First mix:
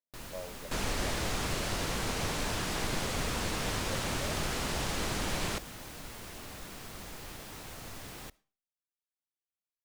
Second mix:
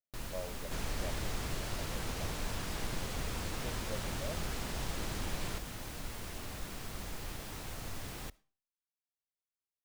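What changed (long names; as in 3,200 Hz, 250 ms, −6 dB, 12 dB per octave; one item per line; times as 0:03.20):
second sound −8.5 dB
master: add low-shelf EQ 110 Hz +7 dB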